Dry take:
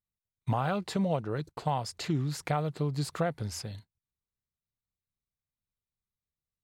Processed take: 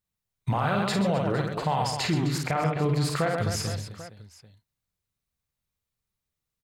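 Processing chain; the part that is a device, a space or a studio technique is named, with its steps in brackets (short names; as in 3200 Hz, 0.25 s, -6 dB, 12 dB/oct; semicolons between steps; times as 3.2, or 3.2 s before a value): 2.38–2.84 steep low-pass 3100 Hz; dynamic EQ 2000 Hz, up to +5 dB, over -48 dBFS, Q 0.81; reverse bouncing-ball echo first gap 50 ms, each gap 1.6×, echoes 5; clipper into limiter (hard clip -15.5 dBFS, distortion -37 dB; limiter -22 dBFS, peak gain reduction 6.5 dB); gain +5.5 dB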